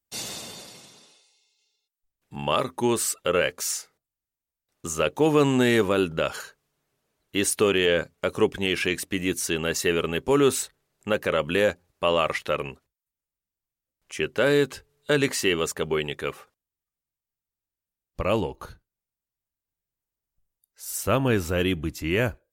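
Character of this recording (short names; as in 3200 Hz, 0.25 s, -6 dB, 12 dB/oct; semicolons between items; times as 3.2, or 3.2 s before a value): noise floor -90 dBFS; spectral tilt -4.0 dB/oct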